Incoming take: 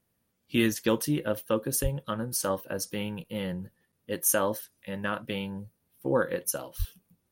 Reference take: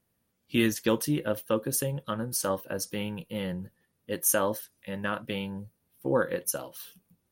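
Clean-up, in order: de-plosive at 1.82/6.78 s; interpolate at 3.24/3.92 s, 6.2 ms

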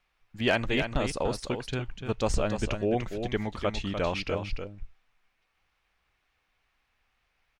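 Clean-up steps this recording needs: clip repair -14.5 dBFS; interpolate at 2.34 s, 1.2 ms; inverse comb 295 ms -7.5 dB

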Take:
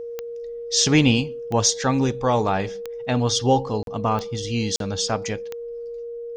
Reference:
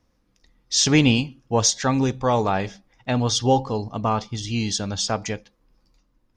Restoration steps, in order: de-click; band-stop 470 Hz, Q 30; interpolate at 3.83/4.76 s, 42 ms

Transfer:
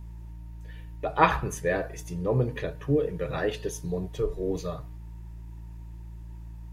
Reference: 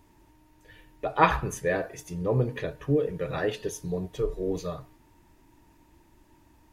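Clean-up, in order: de-hum 56.4 Hz, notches 3

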